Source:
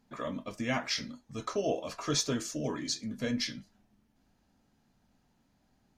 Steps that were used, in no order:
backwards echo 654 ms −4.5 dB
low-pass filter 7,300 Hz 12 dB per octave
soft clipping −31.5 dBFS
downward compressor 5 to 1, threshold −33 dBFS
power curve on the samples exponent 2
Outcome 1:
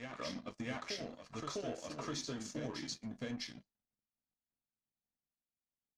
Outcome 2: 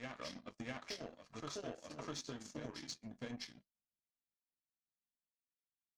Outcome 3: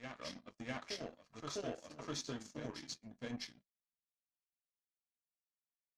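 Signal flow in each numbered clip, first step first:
downward compressor, then backwards echo, then soft clipping, then power curve on the samples, then low-pass filter
backwards echo, then downward compressor, then power curve on the samples, then low-pass filter, then soft clipping
backwards echo, then power curve on the samples, then downward compressor, then soft clipping, then low-pass filter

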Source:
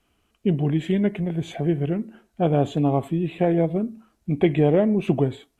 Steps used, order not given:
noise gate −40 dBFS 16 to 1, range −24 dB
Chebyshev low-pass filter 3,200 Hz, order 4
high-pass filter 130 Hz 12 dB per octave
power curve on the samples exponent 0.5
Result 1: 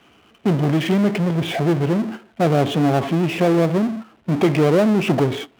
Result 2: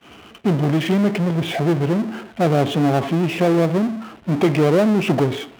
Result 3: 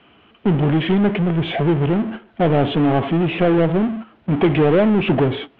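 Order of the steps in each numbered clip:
Chebyshev low-pass filter, then noise gate, then power curve on the samples, then high-pass filter
Chebyshev low-pass filter, then power curve on the samples, then noise gate, then high-pass filter
noise gate, then high-pass filter, then power curve on the samples, then Chebyshev low-pass filter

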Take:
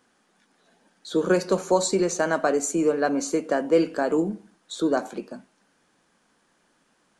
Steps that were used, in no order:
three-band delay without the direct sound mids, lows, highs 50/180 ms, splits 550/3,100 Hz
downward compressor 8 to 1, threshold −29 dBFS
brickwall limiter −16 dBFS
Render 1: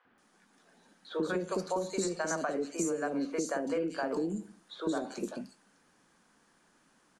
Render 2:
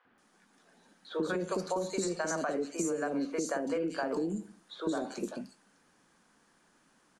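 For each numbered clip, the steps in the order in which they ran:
three-band delay without the direct sound, then downward compressor, then brickwall limiter
three-band delay without the direct sound, then brickwall limiter, then downward compressor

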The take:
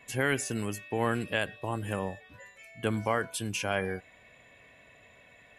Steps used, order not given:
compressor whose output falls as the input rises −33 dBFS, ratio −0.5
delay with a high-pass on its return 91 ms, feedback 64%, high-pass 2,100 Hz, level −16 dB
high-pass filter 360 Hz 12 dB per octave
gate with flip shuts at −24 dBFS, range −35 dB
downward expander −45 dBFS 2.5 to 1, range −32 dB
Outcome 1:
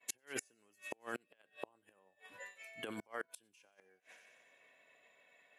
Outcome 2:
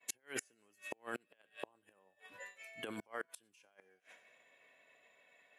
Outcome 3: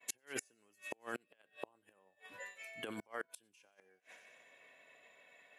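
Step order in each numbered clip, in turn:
downward expander, then compressor whose output falls as the input rises, then delay with a high-pass on its return, then gate with flip, then high-pass filter
delay with a high-pass on its return, then downward expander, then compressor whose output falls as the input rises, then gate with flip, then high-pass filter
compressor whose output falls as the input rises, then downward expander, then delay with a high-pass on its return, then gate with flip, then high-pass filter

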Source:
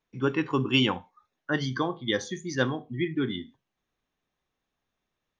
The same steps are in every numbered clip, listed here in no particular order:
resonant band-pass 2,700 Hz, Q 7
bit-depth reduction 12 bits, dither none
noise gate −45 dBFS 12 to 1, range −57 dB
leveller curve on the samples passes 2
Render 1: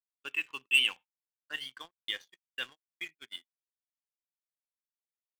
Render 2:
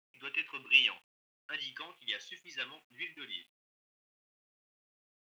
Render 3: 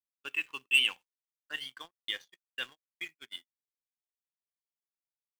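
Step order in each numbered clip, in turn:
bit-depth reduction, then resonant band-pass, then leveller curve on the samples, then noise gate
leveller curve on the samples, then noise gate, then resonant band-pass, then bit-depth reduction
resonant band-pass, then bit-depth reduction, then leveller curve on the samples, then noise gate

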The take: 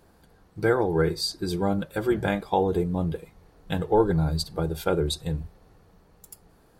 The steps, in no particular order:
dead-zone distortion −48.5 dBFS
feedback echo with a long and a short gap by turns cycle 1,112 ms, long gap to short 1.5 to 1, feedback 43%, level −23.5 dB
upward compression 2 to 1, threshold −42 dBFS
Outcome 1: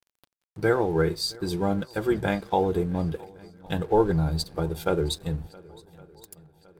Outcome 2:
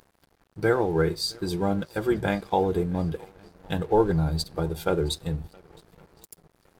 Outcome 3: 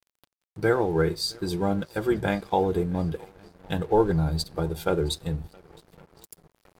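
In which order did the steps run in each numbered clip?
dead-zone distortion, then upward compression, then feedback echo with a long and a short gap by turns
upward compression, then feedback echo with a long and a short gap by turns, then dead-zone distortion
feedback echo with a long and a short gap by turns, then dead-zone distortion, then upward compression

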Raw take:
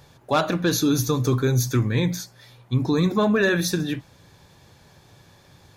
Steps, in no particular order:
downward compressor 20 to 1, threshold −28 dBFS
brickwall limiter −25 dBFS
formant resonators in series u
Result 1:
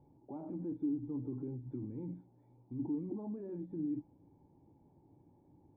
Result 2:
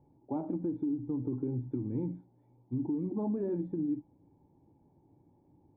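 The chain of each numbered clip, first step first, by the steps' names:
brickwall limiter, then formant resonators in series, then downward compressor
formant resonators in series, then downward compressor, then brickwall limiter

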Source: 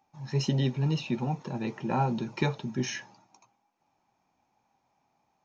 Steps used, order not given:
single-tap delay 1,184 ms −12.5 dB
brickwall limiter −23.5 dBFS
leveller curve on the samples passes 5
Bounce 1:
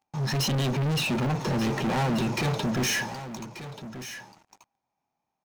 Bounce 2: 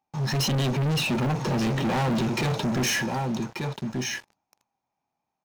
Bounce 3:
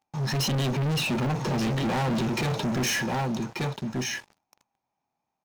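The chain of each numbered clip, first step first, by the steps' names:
brickwall limiter, then leveller curve on the samples, then single-tap delay
brickwall limiter, then single-tap delay, then leveller curve on the samples
single-tap delay, then brickwall limiter, then leveller curve on the samples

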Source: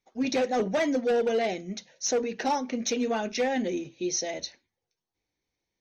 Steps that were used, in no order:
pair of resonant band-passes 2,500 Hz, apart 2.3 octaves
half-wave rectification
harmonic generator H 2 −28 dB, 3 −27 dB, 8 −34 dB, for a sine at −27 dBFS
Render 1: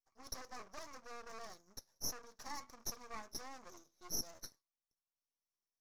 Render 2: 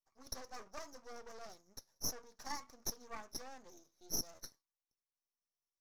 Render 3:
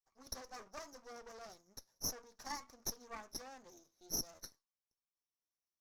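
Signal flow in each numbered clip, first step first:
harmonic generator, then pair of resonant band-passes, then half-wave rectification
pair of resonant band-passes, then harmonic generator, then half-wave rectification
pair of resonant band-passes, then half-wave rectification, then harmonic generator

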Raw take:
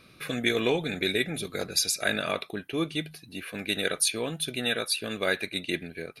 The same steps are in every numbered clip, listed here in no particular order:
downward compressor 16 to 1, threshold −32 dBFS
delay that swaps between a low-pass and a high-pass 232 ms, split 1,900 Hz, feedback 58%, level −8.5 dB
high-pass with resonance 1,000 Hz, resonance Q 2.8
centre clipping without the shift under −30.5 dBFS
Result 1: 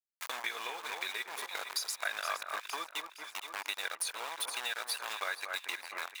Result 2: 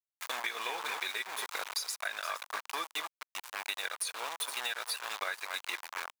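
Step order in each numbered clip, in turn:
centre clipping without the shift, then delay that swaps between a low-pass and a high-pass, then downward compressor, then high-pass with resonance
delay that swaps between a low-pass and a high-pass, then centre clipping without the shift, then high-pass with resonance, then downward compressor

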